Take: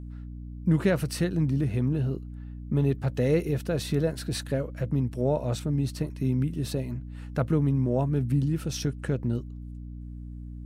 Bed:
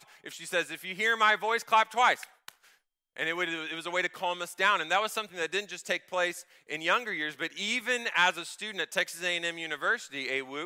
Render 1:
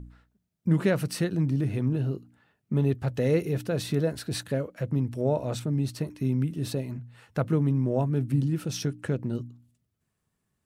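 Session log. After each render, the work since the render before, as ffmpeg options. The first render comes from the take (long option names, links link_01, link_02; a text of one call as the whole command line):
ffmpeg -i in.wav -af "bandreject=frequency=60:width_type=h:width=4,bandreject=frequency=120:width_type=h:width=4,bandreject=frequency=180:width_type=h:width=4,bandreject=frequency=240:width_type=h:width=4,bandreject=frequency=300:width_type=h:width=4" out.wav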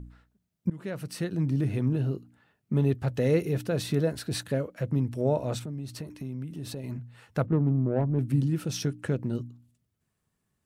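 ffmpeg -i in.wav -filter_complex "[0:a]asettb=1/sr,asplit=3[link_01][link_02][link_03];[link_01]atrim=end=5.584[link_04];[link_02]atrim=start=5.58:end=6.84,asetpts=PTS-STARTPTS,afade=type=in:duration=0.004:curve=qsin,afade=type=out:start_time=1.256:duration=0.004:curve=qsin,acompressor=threshold=-35dB:ratio=3:attack=3.2:release=140:knee=1:detection=peak[link_05];[link_03]atrim=start=6.836[link_06];[link_04][link_05]acrossfade=duration=0.004:curve1=hsin:curve2=qsin[link_07];[link_07][link_06]acrossfade=duration=0.004:curve1=qsin:curve2=hsin,asettb=1/sr,asplit=3[link_08][link_09][link_10];[link_08]atrim=end=7.464[link_11];[link_09]atrim=start=7.46:end=8.19,asetpts=PTS-STARTPTS,afade=type=in:duration=0.004:curve=qsin,afade=type=out:start_time=0.726:duration=0.004:curve=qsin,adynamicsmooth=sensitivity=0.5:basefreq=530[link_12];[link_10]atrim=start=8.186[link_13];[link_11][link_12]acrossfade=duration=0.004:curve1=hsin:curve2=qsin[link_14];[link_14][link_13]acrossfade=duration=0.004:curve1=qsin:curve2=hsin,asplit=2[link_15][link_16];[link_15]atrim=end=0.7,asetpts=PTS-STARTPTS,afade=type=out:start_time=0.696:duration=0.004:curve=hsin:silence=0.0707946[link_17];[link_16]atrim=start=0.7,asetpts=PTS-STARTPTS,afade=type=in:duration=0.9:silence=0.0707946[link_18];[link_17][link_18]concat=n=2:v=0:a=1" out.wav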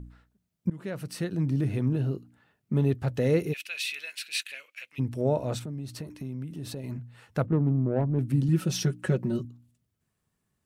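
ffmpeg -i in.wav -filter_complex "[0:a]asplit=3[link_01][link_02][link_03];[link_01]afade=type=out:start_time=3.52:duration=0.02[link_04];[link_02]highpass=frequency=2500:width_type=q:width=6.1,afade=type=in:start_time=3.52:duration=0.02,afade=type=out:start_time=4.98:duration=0.02[link_05];[link_03]afade=type=in:start_time=4.98:duration=0.02[link_06];[link_04][link_05][link_06]amix=inputs=3:normalize=0,asettb=1/sr,asplit=3[link_07][link_08][link_09];[link_07]atrim=end=8.484[link_10];[link_08]atrim=start=8.48:end=9.45,asetpts=PTS-STARTPTS,afade=type=in:duration=0.004:curve=qsin,afade=type=out:start_time=0.966:duration=0.004:curve=qsin,aecho=1:1:5.4:0.99,atrim=end_sample=42777[link_11];[link_09]atrim=start=9.446[link_12];[link_10][link_11]acrossfade=duration=0.004:curve1=hsin:curve2=qsin[link_13];[link_13][link_12]acrossfade=duration=0.004:curve1=qsin:curve2=hsin" out.wav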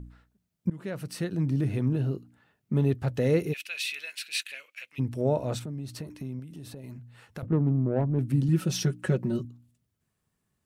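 ffmpeg -i in.wav -filter_complex "[0:a]asettb=1/sr,asplit=3[link_01][link_02][link_03];[link_01]atrim=end=6.394[link_04];[link_02]atrim=start=6.39:end=7.43,asetpts=PTS-STARTPTS,afade=type=in:duration=0.004:curve=qsin,afade=type=out:start_time=1.036:duration=0.004:curve=qsin,acrossover=split=2800|7800[link_05][link_06][link_07];[link_05]acompressor=threshold=-40dB:ratio=4[link_08];[link_06]acompressor=threshold=-56dB:ratio=4[link_09];[link_07]acompressor=threshold=-52dB:ratio=4[link_10];[link_08][link_09][link_10]amix=inputs=3:normalize=0[link_11];[link_03]atrim=start=7.426[link_12];[link_04][link_11]acrossfade=duration=0.004:curve1=hsin:curve2=qsin[link_13];[link_13][link_12]acrossfade=duration=0.004:curve1=qsin:curve2=hsin" out.wav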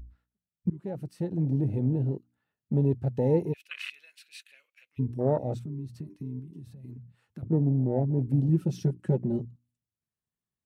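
ffmpeg -i in.wav -af "afwtdn=0.0316" out.wav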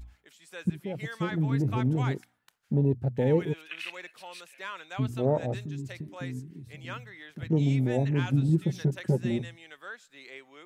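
ffmpeg -i in.wav -i bed.wav -filter_complex "[1:a]volume=-14dB[link_01];[0:a][link_01]amix=inputs=2:normalize=0" out.wav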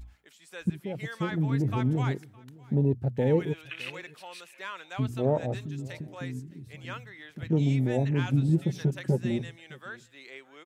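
ffmpeg -i in.wav -af "aecho=1:1:612:0.0668" out.wav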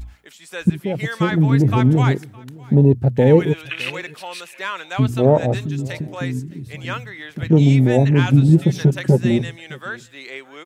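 ffmpeg -i in.wav -af "volume=12dB,alimiter=limit=-2dB:level=0:latency=1" out.wav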